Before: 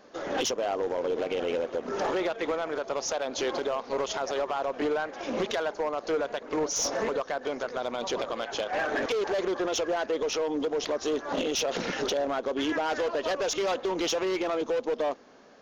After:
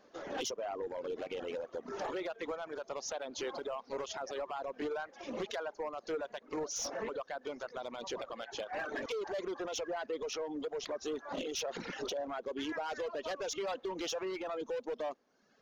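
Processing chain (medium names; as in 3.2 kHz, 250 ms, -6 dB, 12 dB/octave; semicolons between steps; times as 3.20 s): reverb removal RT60 0.97 s; trim -8.5 dB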